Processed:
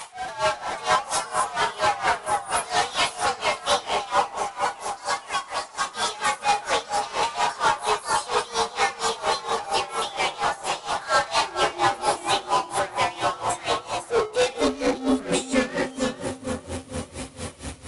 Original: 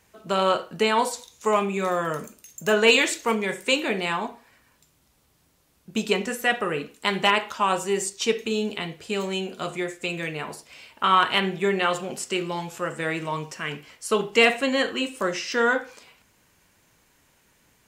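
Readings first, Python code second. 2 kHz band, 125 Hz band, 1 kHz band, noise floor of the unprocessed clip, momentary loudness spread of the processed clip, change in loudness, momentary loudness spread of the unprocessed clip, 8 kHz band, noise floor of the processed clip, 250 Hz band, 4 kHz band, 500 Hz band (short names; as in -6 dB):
-2.0 dB, -3.5 dB, +4.5 dB, -64 dBFS, 7 LU, -0.5 dB, 12 LU, +4.0 dB, -43 dBFS, -2.0 dB, 0.0 dB, -2.0 dB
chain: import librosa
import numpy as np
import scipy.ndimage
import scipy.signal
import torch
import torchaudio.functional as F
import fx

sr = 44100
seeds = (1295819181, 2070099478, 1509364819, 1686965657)

p1 = fx.partial_stretch(x, sr, pct=112)
p2 = fx.high_shelf(p1, sr, hz=5800.0, db=6.5)
p3 = fx.level_steps(p2, sr, step_db=22)
p4 = p2 + (p3 * librosa.db_to_amplitude(0.0))
p5 = np.clip(p4, -10.0 ** (-20.0 / 20.0), 10.0 ** (-20.0 / 20.0))
p6 = fx.filter_sweep_highpass(p5, sr, from_hz=830.0, to_hz=77.0, start_s=13.42, end_s=16.76, q=5.0)
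p7 = fx.power_curve(p6, sr, exponent=0.35)
p8 = fx.echo_pitch(p7, sr, ms=519, semitones=5, count=3, db_per_echo=-6.0)
p9 = fx.brickwall_lowpass(p8, sr, high_hz=11000.0)
p10 = p9 + fx.echo_bbd(p9, sr, ms=445, stages=4096, feedback_pct=65, wet_db=-3.5, dry=0)
p11 = p10 * 10.0 ** (-19 * (0.5 - 0.5 * np.cos(2.0 * np.pi * 4.3 * np.arange(len(p10)) / sr)) / 20.0)
y = p11 * librosa.db_to_amplitude(-8.5)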